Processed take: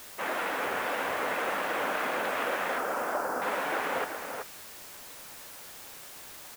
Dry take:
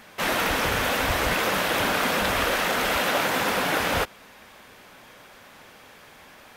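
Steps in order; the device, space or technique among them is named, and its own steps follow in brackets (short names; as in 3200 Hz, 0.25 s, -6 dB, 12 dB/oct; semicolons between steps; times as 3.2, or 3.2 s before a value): wax cylinder (BPF 340–2100 Hz; wow and flutter; white noise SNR 13 dB); 2.78–3.42 band shelf 2700 Hz -15 dB 1.3 oct; outdoor echo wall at 65 m, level -6 dB; gain -5.5 dB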